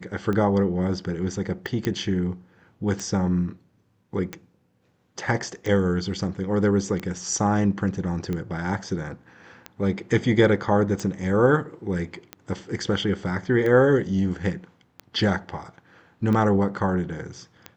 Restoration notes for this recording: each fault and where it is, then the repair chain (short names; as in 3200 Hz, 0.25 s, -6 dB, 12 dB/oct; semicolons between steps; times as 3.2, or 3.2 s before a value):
tick 45 rpm -17 dBFS
1.85 pop -12 dBFS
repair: de-click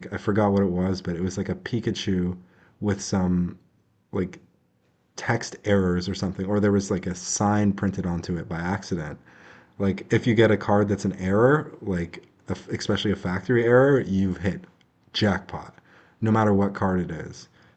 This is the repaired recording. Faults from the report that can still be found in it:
none